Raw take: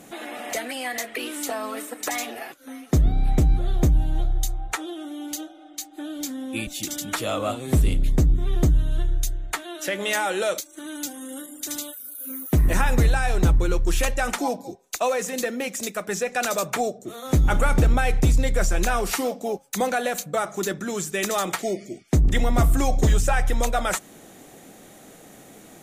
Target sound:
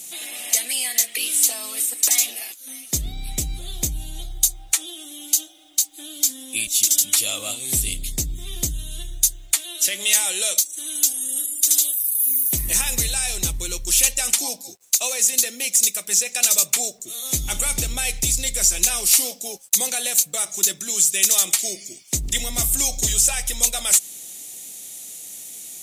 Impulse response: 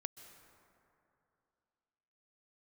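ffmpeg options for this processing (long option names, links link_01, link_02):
-filter_complex "[0:a]lowpass=10000,aemphasis=mode=production:type=50fm,aexciter=amount=6.6:drive=4.8:freq=2200,asplit=2[link_01][link_02];[link_02]asoftclip=type=hard:threshold=0dB,volume=-7dB[link_03];[link_01][link_03]amix=inputs=2:normalize=0,acrusher=bits=6:mix=0:aa=0.5,volume=-13.5dB"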